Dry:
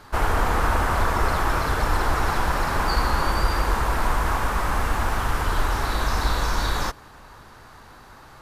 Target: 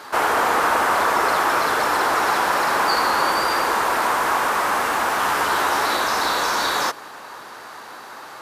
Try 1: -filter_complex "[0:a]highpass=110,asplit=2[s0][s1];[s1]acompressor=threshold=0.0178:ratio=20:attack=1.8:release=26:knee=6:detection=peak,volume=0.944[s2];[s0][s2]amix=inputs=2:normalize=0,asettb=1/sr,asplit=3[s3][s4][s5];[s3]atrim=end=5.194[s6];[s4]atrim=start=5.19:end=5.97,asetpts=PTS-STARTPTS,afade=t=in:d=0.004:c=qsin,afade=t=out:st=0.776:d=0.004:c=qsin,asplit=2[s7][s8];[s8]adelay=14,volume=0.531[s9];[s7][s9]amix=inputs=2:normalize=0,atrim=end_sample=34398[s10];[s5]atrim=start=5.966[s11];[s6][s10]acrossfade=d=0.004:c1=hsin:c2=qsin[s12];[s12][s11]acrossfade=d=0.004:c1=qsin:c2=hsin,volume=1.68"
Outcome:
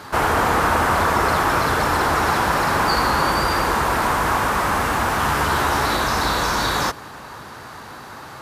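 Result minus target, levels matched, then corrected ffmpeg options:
125 Hz band +16.5 dB
-filter_complex "[0:a]highpass=370,asplit=2[s0][s1];[s1]acompressor=threshold=0.0178:ratio=20:attack=1.8:release=26:knee=6:detection=peak,volume=0.944[s2];[s0][s2]amix=inputs=2:normalize=0,asettb=1/sr,asplit=3[s3][s4][s5];[s3]atrim=end=5.194[s6];[s4]atrim=start=5.19:end=5.97,asetpts=PTS-STARTPTS,afade=t=in:d=0.004:c=qsin,afade=t=out:st=0.776:d=0.004:c=qsin,asplit=2[s7][s8];[s8]adelay=14,volume=0.531[s9];[s7][s9]amix=inputs=2:normalize=0,atrim=end_sample=34398[s10];[s5]atrim=start=5.966[s11];[s6][s10]acrossfade=d=0.004:c1=hsin:c2=qsin[s12];[s12][s11]acrossfade=d=0.004:c1=qsin:c2=hsin,volume=1.68"

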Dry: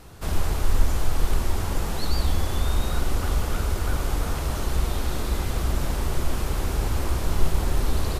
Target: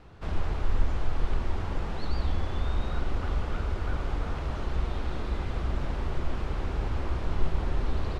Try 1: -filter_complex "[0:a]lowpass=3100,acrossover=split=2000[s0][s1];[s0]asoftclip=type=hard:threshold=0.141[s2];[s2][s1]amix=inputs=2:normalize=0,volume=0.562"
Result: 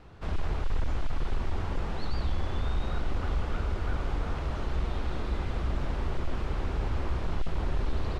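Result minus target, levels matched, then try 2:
hard clipper: distortion +25 dB
-filter_complex "[0:a]lowpass=3100,acrossover=split=2000[s0][s1];[s0]asoftclip=type=hard:threshold=0.447[s2];[s2][s1]amix=inputs=2:normalize=0,volume=0.562"

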